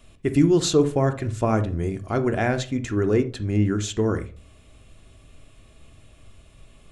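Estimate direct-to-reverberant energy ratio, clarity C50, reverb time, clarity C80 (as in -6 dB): 7.5 dB, 14.0 dB, not exponential, 20.5 dB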